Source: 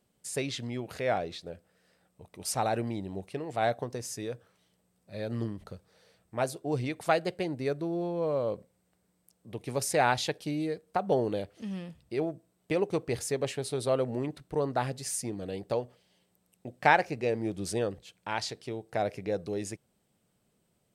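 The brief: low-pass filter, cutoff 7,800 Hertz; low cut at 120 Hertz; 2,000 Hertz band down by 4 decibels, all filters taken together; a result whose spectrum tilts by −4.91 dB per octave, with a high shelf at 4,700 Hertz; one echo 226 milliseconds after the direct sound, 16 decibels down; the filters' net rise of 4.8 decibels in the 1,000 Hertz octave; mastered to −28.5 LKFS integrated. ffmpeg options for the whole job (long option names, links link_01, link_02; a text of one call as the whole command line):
ffmpeg -i in.wav -af "highpass=120,lowpass=7800,equalizer=frequency=1000:width_type=o:gain=8.5,equalizer=frequency=2000:width_type=o:gain=-8.5,highshelf=frequency=4700:gain=-5.5,aecho=1:1:226:0.158,volume=1.5dB" out.wav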